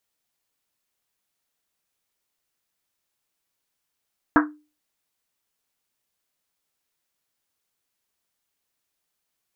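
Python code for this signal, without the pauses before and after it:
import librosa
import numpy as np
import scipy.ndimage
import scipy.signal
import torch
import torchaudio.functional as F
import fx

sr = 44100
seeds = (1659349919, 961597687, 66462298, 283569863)

y = fx.risset_drum(sr, seeds[0], length_s=1.1, hz=300.0, decay_s=0.33, noise_hz=1300.0, noise_width_hz=740.0, noise_pct=45)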